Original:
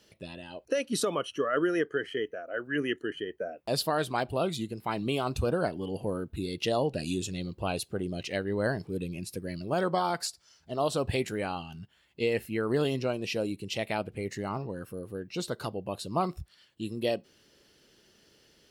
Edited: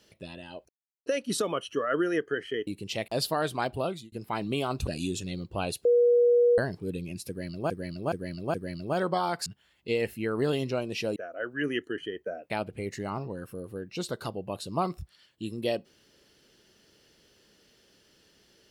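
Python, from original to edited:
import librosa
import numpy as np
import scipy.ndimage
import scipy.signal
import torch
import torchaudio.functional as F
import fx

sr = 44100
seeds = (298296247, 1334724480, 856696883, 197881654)

y = fx.edit(x, sr, fx.insert_silence(at_s=0.69, length_s=0.37),
    fx.swap(start_s=2.3, length_s=1.34, other_s=13.48, other_length_s=0.41),
    fx.fade_out_span(start_s=4.35, length_s=0.33),
    fx.cut(start_s=5.43, length_s=1.51),
    fx.bleep(start_s=7.92, length_s=0.73, hz=481.0, db=-17.5),
    fx.repeat(start_s=9.35, length_s=0.42, count=4),
    fx.cut(start_s=10.27, length_s=1.51), tone=tone)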